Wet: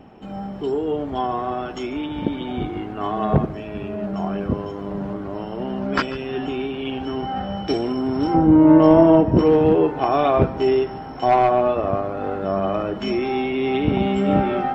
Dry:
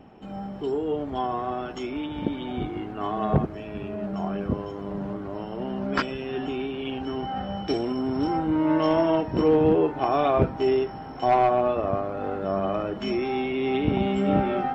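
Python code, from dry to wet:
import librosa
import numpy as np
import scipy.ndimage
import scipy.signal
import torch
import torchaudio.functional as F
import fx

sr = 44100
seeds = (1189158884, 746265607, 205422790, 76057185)

y = fx.tilt_shelf(x, sr, db=8.5, hz=1200.0, at=(8.34, 9.39))
y = y + 10.0 ** (-18.5 / 20.0) * np.pad(y, (int(143 * sr / 1000.0), 0))[:len(y)]
y = y * librosa.db_to_amplitude(4.0)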